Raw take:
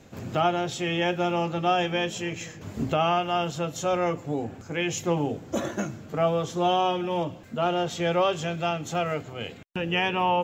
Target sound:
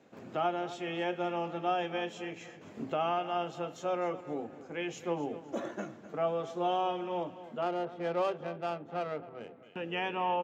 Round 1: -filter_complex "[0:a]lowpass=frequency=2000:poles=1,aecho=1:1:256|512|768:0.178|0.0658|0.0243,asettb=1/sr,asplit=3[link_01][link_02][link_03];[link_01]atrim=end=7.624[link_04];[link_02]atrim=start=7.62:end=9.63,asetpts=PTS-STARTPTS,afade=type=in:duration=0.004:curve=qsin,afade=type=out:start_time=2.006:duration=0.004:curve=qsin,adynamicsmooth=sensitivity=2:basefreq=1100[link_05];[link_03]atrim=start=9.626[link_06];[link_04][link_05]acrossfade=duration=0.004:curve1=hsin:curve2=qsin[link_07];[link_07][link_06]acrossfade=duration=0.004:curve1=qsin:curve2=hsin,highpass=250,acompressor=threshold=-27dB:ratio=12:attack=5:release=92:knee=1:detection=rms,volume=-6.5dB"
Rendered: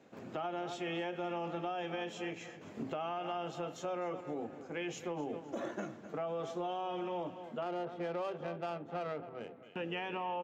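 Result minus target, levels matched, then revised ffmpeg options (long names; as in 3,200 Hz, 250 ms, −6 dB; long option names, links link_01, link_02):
downward compressor: peak gain reduction +9.5 dB
-filter_complex "[0:a]lowpass=frequency=2000:poles=1,aecho=1:1:256|512|768:0.178|0.0658|0.0243,asettb=1/sr,asplit=3[link_01][link_02][link_03];[link_01]atrim=end=7.624[link_04];[link_02]atrim=start=7.62:end=9.63,asetpts=PTS-STARTPTS,afade=type=in:duration=0.004:curve=qsin,afade=type=out:start_time=2.006:duration=0.004:curve=qsin,adynamicsmooth=sensitivity=2:basefreq=1100[link_05];[link_03]atrim=start=9.626[link_06];[link_04][link_05]acrossfade=duration=0.004:curve1=hsin:curve2=qsin[link_07];[link_07][link_06]acrossfade=duration=0.004:curve1=qsin:curve2=hsin,highpass=250,volume=-6.5dB"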